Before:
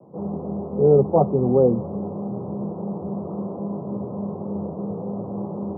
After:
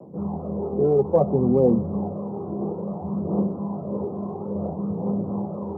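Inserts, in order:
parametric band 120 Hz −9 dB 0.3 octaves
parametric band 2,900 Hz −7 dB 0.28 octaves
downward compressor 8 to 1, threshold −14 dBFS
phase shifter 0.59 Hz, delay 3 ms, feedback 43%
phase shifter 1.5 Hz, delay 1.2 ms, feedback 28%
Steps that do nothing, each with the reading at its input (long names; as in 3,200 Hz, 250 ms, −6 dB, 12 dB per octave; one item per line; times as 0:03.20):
parametric band 2,900 Hz: nothing at its input above 1,000 Hz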